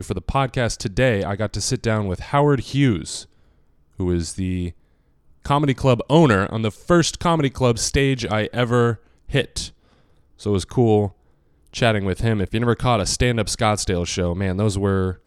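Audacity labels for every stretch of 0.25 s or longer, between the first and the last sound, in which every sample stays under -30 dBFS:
3.210000	3.990000	silence
4.700000	5.450000	silence
8.950000	9.290000	silence
9.680000	10.410000	silence
11.080000	11.740000	silence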